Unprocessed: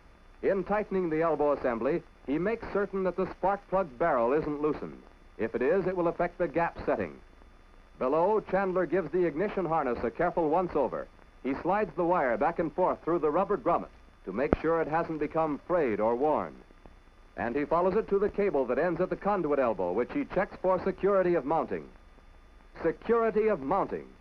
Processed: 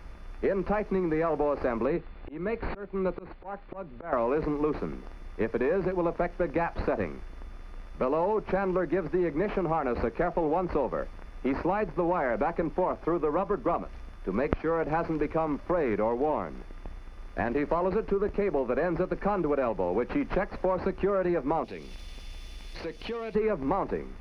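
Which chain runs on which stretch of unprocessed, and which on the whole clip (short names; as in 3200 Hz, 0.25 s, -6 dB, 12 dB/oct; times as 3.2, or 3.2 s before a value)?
1.86–4.13 Chebyshev low-pass 4300 Hz, order 5 + auto swell 0.421 s
21.64–23.35 compressor 2:1, threshold -49 dBFS + resonant high shelf 2200 Hz +13 dB, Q 1.5
whole clip: low shelf 80 Hz +10.5 dB; compressor 4:1, threshold -30 dBFS; gain +5.5 dB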